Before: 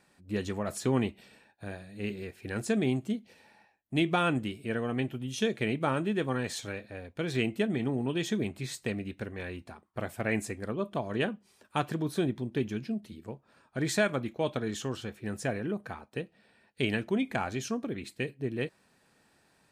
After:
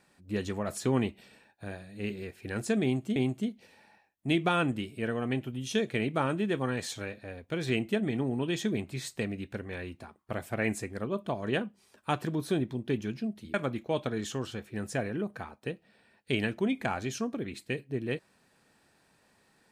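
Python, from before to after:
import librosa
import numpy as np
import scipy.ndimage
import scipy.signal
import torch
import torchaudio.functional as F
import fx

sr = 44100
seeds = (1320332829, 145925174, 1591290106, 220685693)

y = fx.edit(x, sr, fx.repeat(start_s=2.83, length_s=0.33, count=2),
    fx.cut(start_s=13.21, length_s=0.83), tone=tone)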